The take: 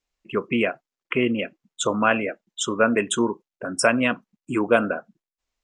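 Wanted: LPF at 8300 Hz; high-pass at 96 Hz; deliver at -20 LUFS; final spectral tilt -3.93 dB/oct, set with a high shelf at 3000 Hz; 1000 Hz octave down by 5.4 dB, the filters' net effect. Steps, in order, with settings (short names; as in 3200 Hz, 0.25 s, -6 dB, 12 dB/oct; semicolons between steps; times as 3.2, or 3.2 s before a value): HPF 96 Hz; LPF 8300 Hz; bell 1000 Hz -7 dB; high shelf 3000 Hz -6 dB; gain +6 dB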